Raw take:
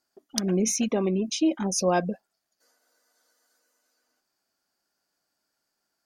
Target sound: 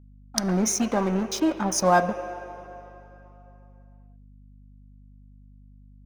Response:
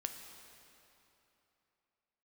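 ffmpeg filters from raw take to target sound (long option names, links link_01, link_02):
-filter_complex "[0:a]aeval=exprs='sgn(val(0))*max(abs(val(0))-0.0126,0)':channel_layout=same,asplit=2[link_01][link_02];[link_02]acrossover=split=430 2600:gain=0.0891 1 0.112[link_03][link_04][link_05];[link_03][link_04][link_05]amix=inputs=3:normalize=0[link_06];[1:a]atrim=start_sample=2205[link_07];[link_06][link_07]afir=irnorm=-1:irlink=0,volume=2.5dB[link_08];[link_01][link_08]amix=inputs=2:normalize=0,aeval=exprs='val(0)+0.00251*(sin(2*PI*50*n/s)+sin(2*PI*2*50*n/s)/2+sin(2*PI*3*50*n/s)/3+sin(2*PI*4*50*n/s)/4+sin(2*PI*5*50*n/s)/5)':channel_layout=same,volume=3dB"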